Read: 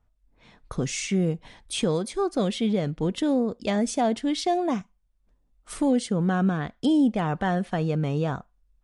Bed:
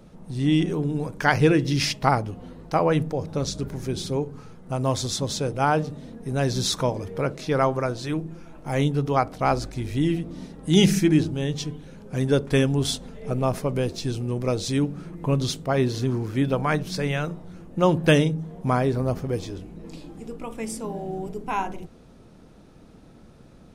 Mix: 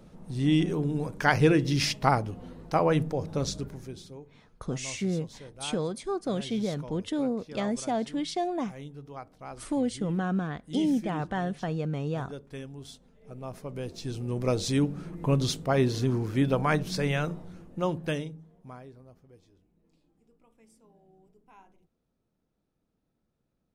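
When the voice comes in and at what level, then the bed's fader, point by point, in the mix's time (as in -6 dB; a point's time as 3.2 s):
3.90 s, -5.5 dB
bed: 3.51 s -3 dB
4.21 s -20.5 dB
13.12 s -20.5 dB
14.49 s -2 dB
17.4 s -2 dB
19.1 s -29 dB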